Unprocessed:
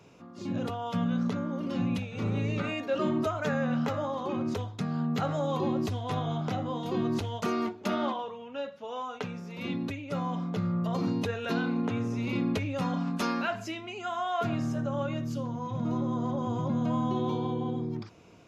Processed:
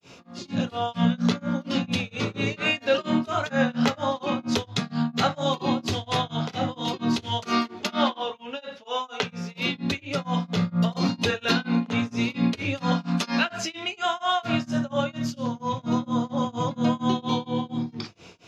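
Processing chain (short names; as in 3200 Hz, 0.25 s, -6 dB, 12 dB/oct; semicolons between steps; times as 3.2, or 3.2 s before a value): bell 4200 Hz +11.5 dB 2.1 oct; notches 50/100/150/200/250/300/350 Hz; reverb, pre-delay 7 ms, DRR 7.5 dB; grains 0.252 s, grains 4.3/s, spray 29 ms, pitch spread up and down by 0 st; gain +7 dB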